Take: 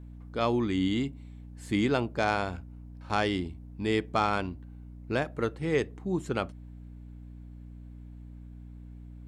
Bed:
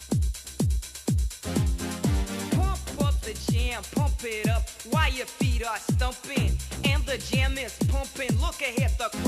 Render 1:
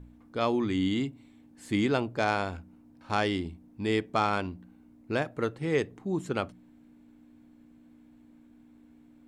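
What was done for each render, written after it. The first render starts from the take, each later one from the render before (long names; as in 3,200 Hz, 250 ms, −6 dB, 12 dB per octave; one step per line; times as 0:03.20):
hum removal 60 Hz, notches 3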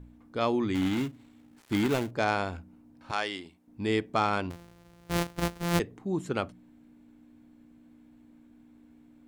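0:00.74–0:02.11: gap after every zero crossing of 0.25 ms
0:03.11–0:03.68: high-pass filter 950 Hz 6 dB per octave
0:04.50–0:05.80: samples sorted by size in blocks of 256 samples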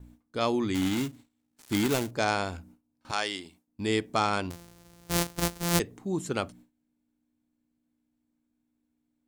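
bass and treble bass 0 dB, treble +10 dB
noise gate with hold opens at −42 dBFS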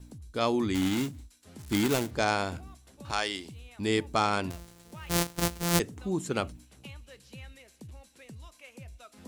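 mix in bed −22 dB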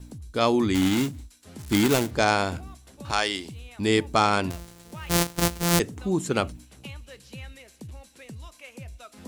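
level +5.5 dB
brickwall limiter −1 dBFS, peak gain reduction 3 dB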